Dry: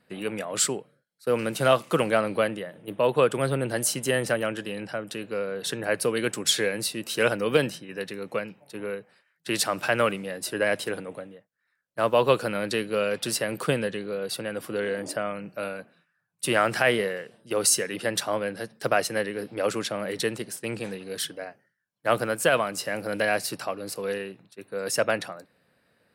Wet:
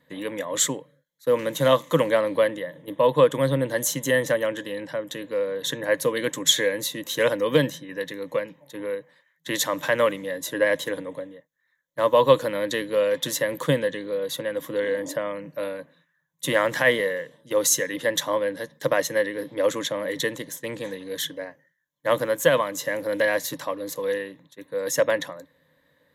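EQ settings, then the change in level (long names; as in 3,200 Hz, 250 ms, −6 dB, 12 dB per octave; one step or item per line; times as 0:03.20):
EQ curve with evenly spaced ripples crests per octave 1.1, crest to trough 13 dB
0.0 dB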